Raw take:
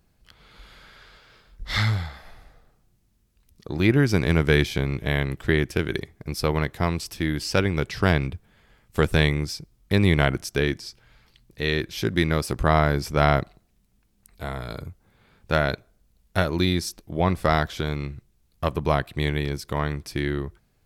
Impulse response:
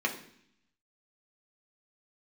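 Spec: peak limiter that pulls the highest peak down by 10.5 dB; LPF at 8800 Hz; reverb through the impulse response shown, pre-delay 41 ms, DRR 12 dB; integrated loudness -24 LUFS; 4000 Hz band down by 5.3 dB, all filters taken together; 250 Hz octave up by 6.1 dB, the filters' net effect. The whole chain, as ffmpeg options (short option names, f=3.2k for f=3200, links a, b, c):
-filter_complex "[0:a]lowpass=8.8k,equalizer=f=250:t=o:g=9,equalizer=f=4k:t=o:g=-6.5,alimiter=limit=-13dB:level=0:latency=1,asplit=2[a][b];[1:a]atrim=start_sample=2205,adelay=41[c];[b][c]afir=irnorm=-1:irlink=0,volume=-20.5dB[d];[a][d]amix=inputs=2:normalize=0,volume=2dB"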